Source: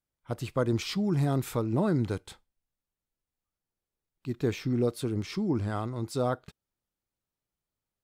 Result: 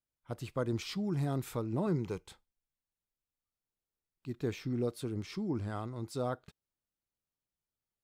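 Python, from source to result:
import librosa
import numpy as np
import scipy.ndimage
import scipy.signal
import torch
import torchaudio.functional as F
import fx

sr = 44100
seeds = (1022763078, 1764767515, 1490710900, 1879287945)

y = fx.ripple_eq(x, sr, per_octave=0.77, db=8, at=(1.86, 2.28))
y = y * librosa.db_to_amplitude(-6.5)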